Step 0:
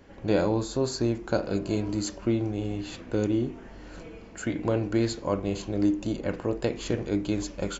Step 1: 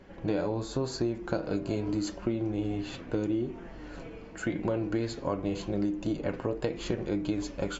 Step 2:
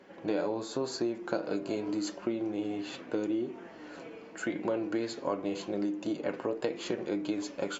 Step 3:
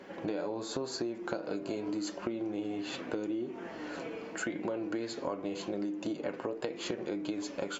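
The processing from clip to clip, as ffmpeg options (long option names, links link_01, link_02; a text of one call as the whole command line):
ffmpeg -i in.wav -af "flanger=delay=5.2:depth=2.3:regen=54:speed=0.86:shape=triangular,highshelf=frequency=6500:gain=-11.5,acompressor=threshold=-31dB:ratio=5,volume=5dB" out.wav
ffmpeg -i in.wav -af "highpass=260" out.wav
ffmpeg -i in.wav -af "acompressor=threshold=-41dB:ratio=3,volume=6dB" out.wav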